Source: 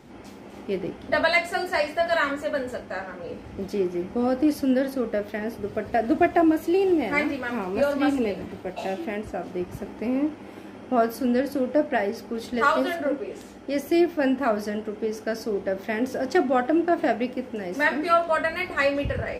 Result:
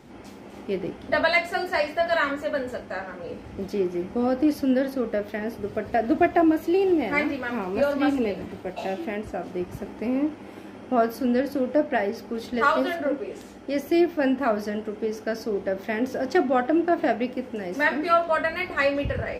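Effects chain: dynamic EQ 9000 Hz, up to -6 dB, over -54 dBFS, Q 1.3

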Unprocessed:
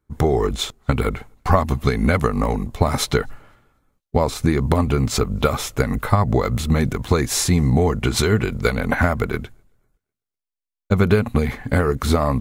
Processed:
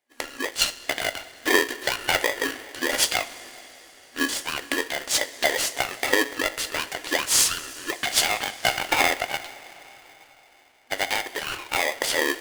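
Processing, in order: FFT band-pass 940–12000 Hz; two-slope reverb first 0.28 s, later 4.3 s, from -18 dB, DRR 8.5 dB; polarity switched at an audio rate 700 Hz; gain +2.5 dB

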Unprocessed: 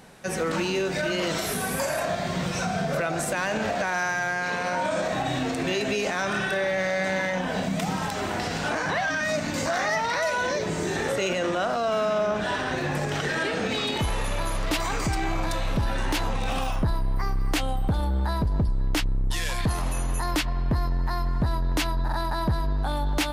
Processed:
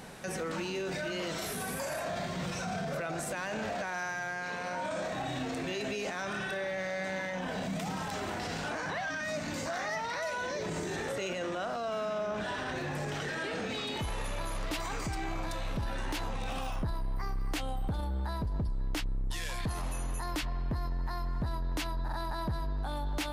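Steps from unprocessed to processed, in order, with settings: limiter -30.5 dBFS, peak gain reduction 12 dB; gain +2.5 dB

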